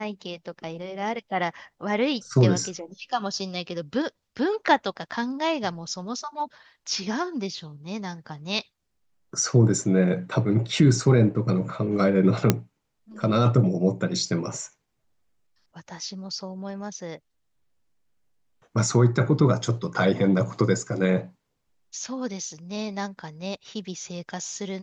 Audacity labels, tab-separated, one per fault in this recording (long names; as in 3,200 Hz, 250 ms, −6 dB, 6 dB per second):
12.500000	12.500000	click −3 dBFS